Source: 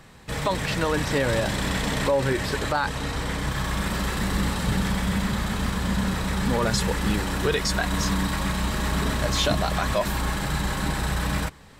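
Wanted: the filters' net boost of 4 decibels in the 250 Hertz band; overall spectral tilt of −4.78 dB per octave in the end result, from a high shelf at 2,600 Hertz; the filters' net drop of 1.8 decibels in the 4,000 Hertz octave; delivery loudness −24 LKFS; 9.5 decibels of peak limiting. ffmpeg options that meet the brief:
ffmpeg -i in.wav -af "equalizer=frequency=250:width_type=o:gain=5.5,highshelf=frequency=2600:gain=5,equalizer=frequency=4000:width_type=o:gain=-6.5,volume=4dB,alimiter=limit=-14.5dB:level=0:latency=1" out.wav

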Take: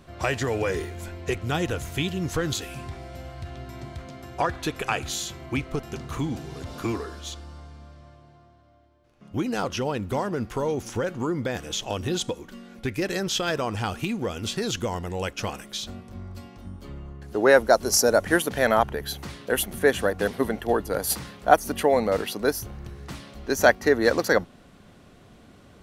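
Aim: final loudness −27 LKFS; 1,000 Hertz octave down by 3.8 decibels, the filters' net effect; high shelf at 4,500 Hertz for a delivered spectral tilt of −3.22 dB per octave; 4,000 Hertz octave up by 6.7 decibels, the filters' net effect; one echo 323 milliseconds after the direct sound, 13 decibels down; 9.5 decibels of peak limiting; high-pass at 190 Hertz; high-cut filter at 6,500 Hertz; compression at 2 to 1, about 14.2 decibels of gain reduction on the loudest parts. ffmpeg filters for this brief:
ffmpeg -i in.wav -af "highpass=190,lowpass=6500,equalizer=frequency=1000:width_type=o:gain=-6.5,equalizer=frequency=4000:width_type=o:gain=7.5,highshelf=frequency=4500:gain=4,acompressor=threshold=-39dB:ratio=2,alimiter=level_in=2dB:limit=-24dB:level=0:latency=1,volume=-2dB,aecho=1:1:323:0.224,volume=11.5dB" out.wav

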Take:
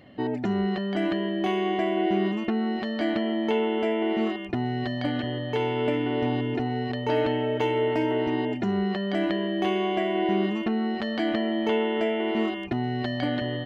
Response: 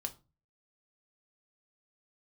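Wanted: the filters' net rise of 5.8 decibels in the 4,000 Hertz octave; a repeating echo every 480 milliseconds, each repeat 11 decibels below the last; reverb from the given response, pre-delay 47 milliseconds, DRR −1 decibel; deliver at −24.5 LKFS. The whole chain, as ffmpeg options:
-filter_complex "[0:a]equalizer=frequency=4000:width_type=o:gain=9,aecho=1:1:480|960|1440:0.282|0.0789|0.0221,asplit=2[link_01][link_02];[1:a]atrim=start_sample=2205,adelay=47[link_03];[link_02][link_03]afir=irnorm=-1:irlink=0,volume=2dB[link_04];[link_01][link_04]amix=inputs=2:normalize=0,volume=-3dB"

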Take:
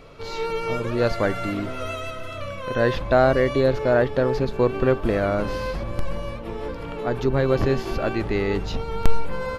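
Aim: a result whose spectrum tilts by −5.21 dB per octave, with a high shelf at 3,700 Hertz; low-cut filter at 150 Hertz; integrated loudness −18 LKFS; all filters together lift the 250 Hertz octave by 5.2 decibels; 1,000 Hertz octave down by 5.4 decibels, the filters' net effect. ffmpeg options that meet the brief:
ffmpeg -i in.wav -af "highpass=150,equalizer=frequency=250:width_type=o:gain=7.5,equalizer=frequency=1000:width_type=o:gain=-8,highshelf=frequency=3700:gain=-5,volume=5dB" out.wav

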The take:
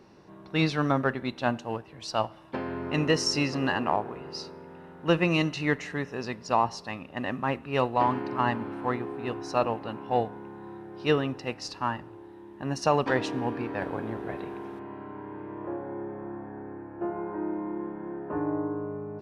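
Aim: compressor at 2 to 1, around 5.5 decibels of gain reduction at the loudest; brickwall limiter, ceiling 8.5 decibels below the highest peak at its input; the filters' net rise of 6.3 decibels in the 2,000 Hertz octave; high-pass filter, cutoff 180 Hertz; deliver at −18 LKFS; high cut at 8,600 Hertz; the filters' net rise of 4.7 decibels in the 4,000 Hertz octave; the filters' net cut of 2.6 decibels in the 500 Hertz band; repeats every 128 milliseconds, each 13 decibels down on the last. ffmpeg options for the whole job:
ffmpeg -i in.wav -af "highpass=180,lowpass=8600,equalizer=frequency=500:width_type=o:gain=-3.5,equalizer=frequency=2000:width_type=o:gain=7,equalizer=frequency=4000:width_type=o:gain=4.5,acompressor=threshold=-28dB:ratio=2,alimiter=limit=-21dB:level=0:latency=1,aecho=1:1:128|256|384:0.224|0.0493|0.0108,volume=16.5dB" out.wav

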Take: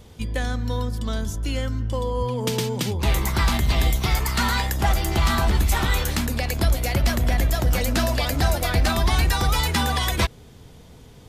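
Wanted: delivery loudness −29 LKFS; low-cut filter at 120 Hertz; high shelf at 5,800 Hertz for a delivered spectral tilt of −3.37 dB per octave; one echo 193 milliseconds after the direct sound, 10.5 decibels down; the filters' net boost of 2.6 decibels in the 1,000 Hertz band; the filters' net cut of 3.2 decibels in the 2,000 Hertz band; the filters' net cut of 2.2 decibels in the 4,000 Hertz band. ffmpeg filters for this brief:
ffmpeg -i in.wav -af "highpass=120,equalizer=frequency=1000:width_type=o:gain=4.5,equalizer=frequency=2000:width_type=o:gain=-5.5,equalizer=frequency=4000:width_type=o:gain=-4.5,highshelf=frequency=5800:gain=8.5,aecho=1:1:193:0.299,volume=-5.5dB" out.wav

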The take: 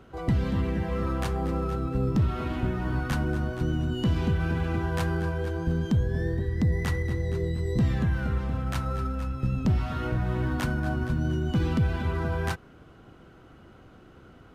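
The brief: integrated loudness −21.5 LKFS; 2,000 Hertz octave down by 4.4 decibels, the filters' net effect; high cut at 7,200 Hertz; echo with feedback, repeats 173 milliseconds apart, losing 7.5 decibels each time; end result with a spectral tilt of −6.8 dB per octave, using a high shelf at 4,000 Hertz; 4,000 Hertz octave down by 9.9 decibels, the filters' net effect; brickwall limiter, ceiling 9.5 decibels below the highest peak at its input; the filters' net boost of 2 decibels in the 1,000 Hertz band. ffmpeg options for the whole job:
ffmpeg -i in.wav -af "lowpass=7200,equalizer=frequency=1000:width_type=o:gain=5.5,equalizer=frequency=2000:width_type=o:gain=-7,highshelf=frequency=4000:gain=-6,equalizer=frequency=4000:width_type=o:gain=-7.5,alimiter=level_in=1.5dB:limit=-24dB:level=0:latency=1,volume=-1.5dB,aecho=1:1:173|346|519|692|865:0.422|0.177|0.0744|0.0312|0.0131,volume=12dB" out.wav

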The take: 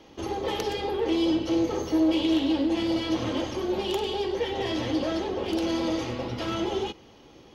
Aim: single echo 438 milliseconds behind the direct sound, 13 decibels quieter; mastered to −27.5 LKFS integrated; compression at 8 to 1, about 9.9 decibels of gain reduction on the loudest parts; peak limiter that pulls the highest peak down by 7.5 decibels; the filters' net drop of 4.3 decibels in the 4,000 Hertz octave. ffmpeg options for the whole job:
ffmpeg -i in.wav -af "equalizer=frequency=4000:width_type=o:gain=-6,acompressor=threshold=-30dB:ratio=8,alimiter=level_in=4.5dB:limit=-24dB:level=0:latency=1,volume=-4.5dB,aecho=1:1:438:0.224,volume=9dB" out.wav

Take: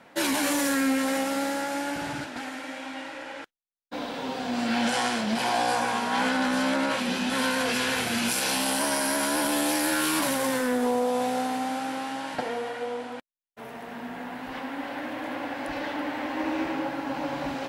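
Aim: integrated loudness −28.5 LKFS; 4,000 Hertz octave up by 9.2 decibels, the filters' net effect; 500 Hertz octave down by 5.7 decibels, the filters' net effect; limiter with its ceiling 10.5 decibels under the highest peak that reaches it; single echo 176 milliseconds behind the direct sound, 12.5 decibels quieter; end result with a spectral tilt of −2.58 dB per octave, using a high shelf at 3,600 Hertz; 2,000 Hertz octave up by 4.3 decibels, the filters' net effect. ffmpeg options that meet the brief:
ffmpeg -i in.wav -af "equalizer=frequency=500:width_type=o:gain=-7,equalizer=frequency=2000:width_type=o:gain=3,highshelf=frequency=3600:gain=3.5,equalizer=frequency=4000:width_type=o:gain=8.5,alimiter=limit=-18.5dB:level=0:latency=1,aecho=1:1:176:0.237,volume=-1dB" out.wav

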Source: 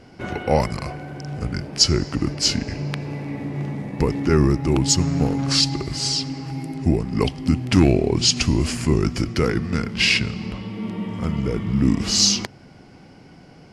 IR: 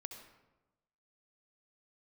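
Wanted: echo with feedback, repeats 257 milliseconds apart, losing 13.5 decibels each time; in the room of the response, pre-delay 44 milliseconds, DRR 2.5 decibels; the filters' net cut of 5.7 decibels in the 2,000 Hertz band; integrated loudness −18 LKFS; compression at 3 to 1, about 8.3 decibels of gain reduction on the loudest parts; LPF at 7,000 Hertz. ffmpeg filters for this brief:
-filter_complex "[0:a]lowpass=7000,equalizer=frequency=2000:width_type=o:gain=-7.5,acompressor=threshold=-21dB:ratio=3,aecho=1:1:257|514:0.211|0.0444,asplit=2[link_01][link_02];[1:a]atrim=start_sample=2205,adelay=44[link_03];[link_02][link_03]afir=irnorm=-1:irlink=0,volume=1dB[link_04];[link_01][link_04]amix=inputs=2:normalize=0,volume=6dB"

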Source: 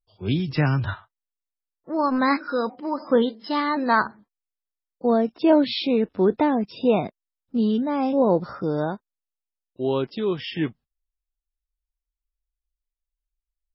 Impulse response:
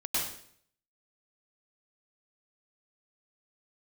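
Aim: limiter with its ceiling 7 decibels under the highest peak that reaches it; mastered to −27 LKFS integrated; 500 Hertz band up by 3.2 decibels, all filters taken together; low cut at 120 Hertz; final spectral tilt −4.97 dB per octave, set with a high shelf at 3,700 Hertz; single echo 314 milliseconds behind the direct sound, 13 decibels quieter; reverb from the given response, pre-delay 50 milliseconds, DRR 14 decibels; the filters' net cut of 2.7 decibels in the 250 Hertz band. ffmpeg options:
-filter_complex "[0:a]highpass=120,equalizer=frequency=250:width_type=o:gain=-4.5,equalizer=frequency=500:width_type=o:gain=5,highshelf=frequency=3700:gain=-4,alimiter=limit=-12dB:level=0:latency=1,aecho=1:1:314:0.224,asplit=2[link_01][link_02];[1:a]atrim=start_sample=2205,adelay=50[link_03];[link_02][link_03]afir=irnorm=-1:irlink=0,volume=-21dB[link_04];[link_01][link_04]amix=inputs=2:normalize=0,volume=-3dB"

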